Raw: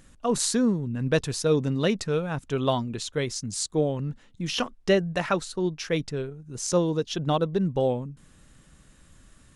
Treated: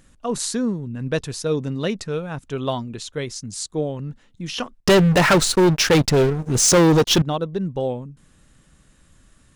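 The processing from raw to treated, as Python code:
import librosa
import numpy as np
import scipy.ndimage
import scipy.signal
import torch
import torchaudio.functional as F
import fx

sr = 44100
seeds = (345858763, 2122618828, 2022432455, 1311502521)

y = fx.leveller(x, sr, passes=5, at=(4.8, 7.22))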